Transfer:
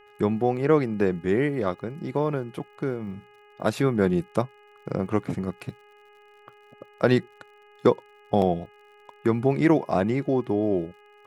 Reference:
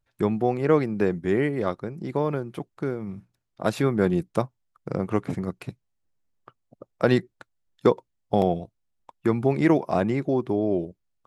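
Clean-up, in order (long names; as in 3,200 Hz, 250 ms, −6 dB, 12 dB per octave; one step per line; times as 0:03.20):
click removal
hum removal 414.6 Hz, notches 7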